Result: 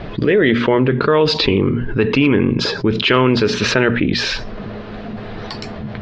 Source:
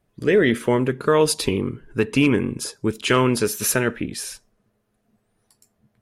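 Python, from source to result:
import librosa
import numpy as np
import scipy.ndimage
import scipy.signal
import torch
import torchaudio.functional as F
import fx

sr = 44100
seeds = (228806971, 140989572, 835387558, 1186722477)

y = scipy.signal.sosfilt(scipy.signal.butter(6, 4400.0, 'lowpass', fs=sr, output='sos'), x)
y = fx.hum_notches(y, sr, base_hz=60, count=4)
y = fx.env_flatten(y, sr, amount_pct=70)
y = F.gain(torch.from_numpy(y), 1.5).numpy()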